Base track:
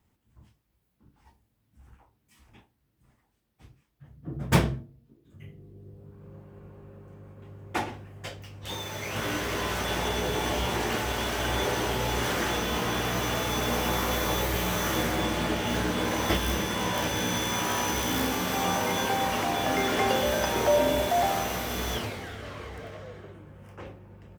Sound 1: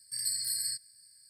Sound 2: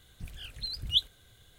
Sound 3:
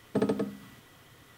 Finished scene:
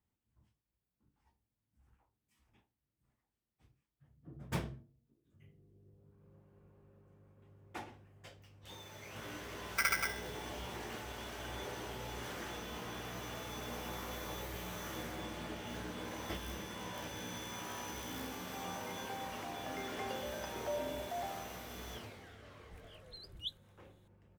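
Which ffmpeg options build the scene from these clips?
ffmpeg -i bed.wav -i cue0.wav -i cue1.wav -i cue2.wav -filter_complex "[0:a]volume=-16dB[link_01];[3:a]aeval=exprs='val(0)*sgn(sin(2*PI*1800*n/s))':channel_layout=same,atrim=end=1.37,asetpts=PTS-STARTPTS,volume=-5.5dB,afade=type=in:duration=0.004:curve=hsin,afade=type=out:start_time=1.366:duration=0.004:curve=hsin,adelay=9630[link_02];[2:a]atrim=end=1.58,asetpts=PTS-STARTPTS,volume=-16dB,afade=type=in:duration=0.004:curve=hsin,afade=type=out:start_time=1.576:duration=0.004:curve=hsin,adelay=22500[link_03];[link_01][link_02][link_03]amix=inputs=3:normalize=0" out.wav

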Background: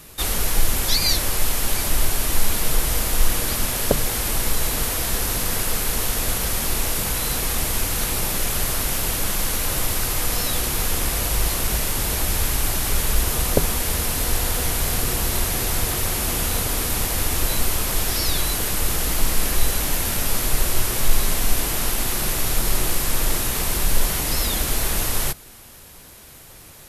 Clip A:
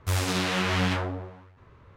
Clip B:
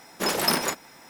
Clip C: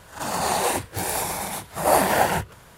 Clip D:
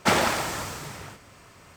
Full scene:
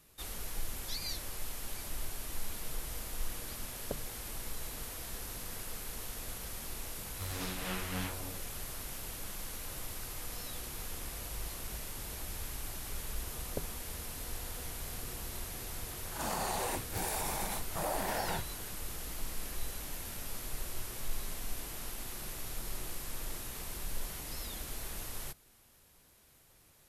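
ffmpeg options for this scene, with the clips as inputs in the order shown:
ffmpeg -i bed.wav -i cue0.wav -i cue1.wav -i cue2.wav -filter_complex "[0:a]volume=-19.5dB[link_01];[1:a]tremolo=f=3.4:d=0.48[link_02];[3:a]acompressor=threshold=-23dB:ratio=6:attack=3.2:release=140:knee=1:detection=peak[link_03];[link_02]atrim=end=1.96,asetpts=PTS-STARTPTS,volume=-11.5dB,afade=type=in:duration=0.004:curve=hsin,afade=type=out:start_time=1.956:duration=0.004:curve=hsin,adelay=7130[link_04];[link_03]atrim=end=2.77,asetpts=PTS-STARTPTS,volume=-8.5dB,afade=type=in:duration=0.004:curve=hsin,afade=type=out:start_time=2.766:duration=0.004:curve=hsin,adelay=15990[link_05];[link_01][link_04][link_05]amix=inputs=3:normalize=0" out.wav

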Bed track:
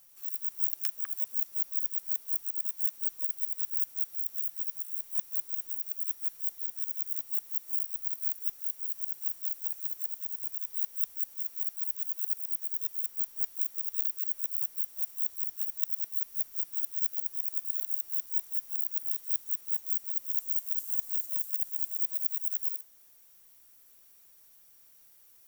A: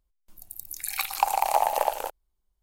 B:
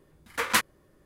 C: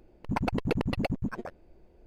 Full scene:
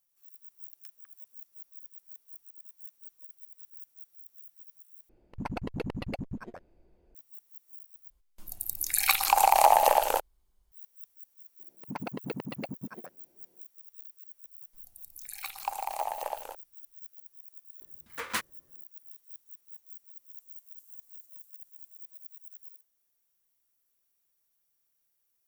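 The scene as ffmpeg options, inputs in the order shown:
ffmpeg -i bed.wav -i cue0.wav -i cue1.wav -i cue2.wav -filter_complex "[3:a]asplit=2[link_01][link_02];[1:a]asplit=2[link_03][link_04];[0:a]volume=-17.5dB[link_05];[link_03]alimiter=level_in=11.5dB:limit=-1dB:release=50:level=0:latency=1[link_06];[link_02]highpass=frequency=140:width=0.5412,highpass=frequency=140:width=1.3066[link_07];[link_05]asplit=3[link_08][link_09][link_10];[link_08]atrim=end=5.094[link_11];[link_01]atrim=end=2.06,asetpts=PTS-STARTPTS,volume=-6.5dB[link_12];[link_09]atrim=start=7.146:end=8.104[link_13];[link_06]atrim=end=2.62,asetpts=PTS-STARTPTS,volume=-6dB[link_14];[link_10]atrim=start=10.716[link_15];[link_07]atrim=end=2.06,asetpts=PTS-STARTPTS,volume=-7.5dB,afade=type=in:duration=0.004:curve=hsin,afade=type=out:start_time=2.056:duration=0.004:curve=hsin,adelay=11590[link_16];[link_04]atrim=end=2.62,asetpts=PTS-STARTPTS,volume=-10.5dB,afade=type=in:duration=0.004:curve=hsin,afade=type=out:start_time=2.616:duration=0.004:curve=hsin,adelay=14450[link_17];[2:a]atrim=end=1.05,asetpts=PTS-STARTPTS,volume=-9dB,afade=type=in:duration=0.02,afade=type=out:start_time=1.03:duration=0.02,adelay=784980S[link_18];[link_11][link_12]acrossfade=duration=0.004:curve1=hsin:curve2=hsin[link_19];[link_19][link_13]acrossfade=duration=0.004:curve1=hsin:curve2=hsin[link_20];[link_20][link_14]acrossfade=duration=0.004:curve1=hsin:curve2=hsin[link_21];[link_21][link_15]acrossfade=duration=0.004:curve1=hsin:curve2=hsin[link_22];[link_22][link_16][link_17][link_18]amix=inputs=4:normalize=0" out.wav

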